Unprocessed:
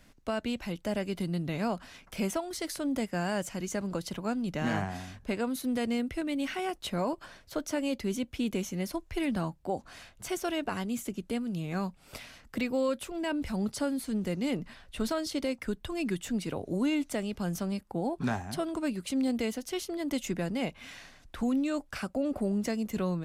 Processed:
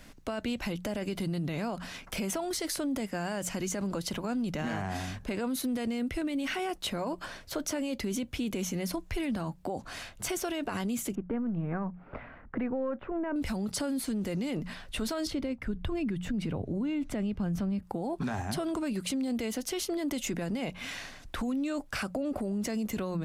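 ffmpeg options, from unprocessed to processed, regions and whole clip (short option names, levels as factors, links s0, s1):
-filter_complex "[0:a]asettb=1/sr,asplit=3[s0][s1][s2];[s0]atrim=end=11.154[s3];[s1]atrim=start=11.15:end=13.36,asetpts=PTS-STARTPTS,afade=t=in:d=0.004:c=qsin,afade=t=out:st=2.206:d=0.004:c=qsin,aeval=exprs='if(lt(val(0),0),0.708*val(0),val(0))':c=same,lowpass=f=1700:w=0.5412,lowpass=f=1700:w=1.3066[s4];[s2]atrim=start=13.356[s5];[s3][s4]acrossfade=d=0.004:c1=hsin:c2=qsin[s6];[s6][s5]acrossfade=d=0.004:c1=qsin:c2=hsin,asettb=1/sr,asplit=3[s7][s8][s9];[s7]atrim=end=15.274[s10];[s8]atrim=start=15.27:end=17.83,asetpts=PTS-STARTPTS,afade=t=in:d=0.004:c=qsin,afade=t=out:st=2.556:d=0.004:c=qsin,bass=f=250:g=11,treble=f=4000:g=-12,tremolo=f=1.7:d=0.57[s11];[s9]atrim=start=17.826[s12];[s10][s11]acrossfade=d=0.004:c1=hsin:c2=qsin[s13];[s13][s12]acrossfade=d=0.004:c1=qsin:c2=hsin,bandreject=f=60:t=h:w=6,bandreject=f=120:t=h:w=6,bandreject=f=180:t=h:w=6,alimiter=level_in=1.78:limit=0.0631:level=0:latency=1:release=28,volume=0.562,acompressor=threshold=0.0126:ratio=2.5,volume=2.37"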